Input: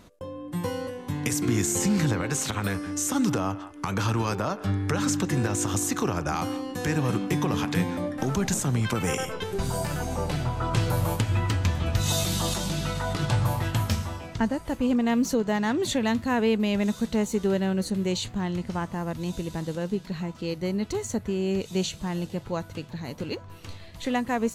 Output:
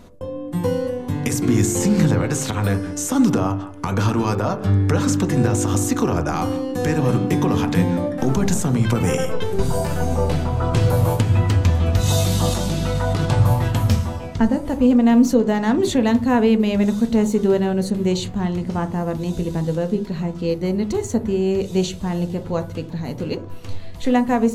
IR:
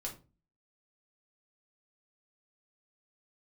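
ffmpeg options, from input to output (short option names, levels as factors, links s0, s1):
-filter_complex "[0:a]asplit=2[s0][s1];[s1]lowpass=1000[s2];[1:a]atrim=start_sample=2205,highshelf=f=3400:g=10[s3];[s2][s3]afir=irnorm=-1:irlink=0,volume=1.06[s4];[s0][s4]amix=inputs=2:normalize=0,volume=1.33"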